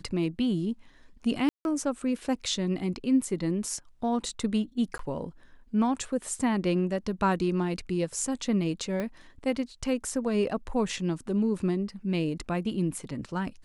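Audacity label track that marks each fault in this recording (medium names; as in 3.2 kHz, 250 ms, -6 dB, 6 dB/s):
1.490000	1.650000	dropout 161 ms
4.980000	4.990000	dropout 13 ms
9.000000	9.000000	pop -19 dBFS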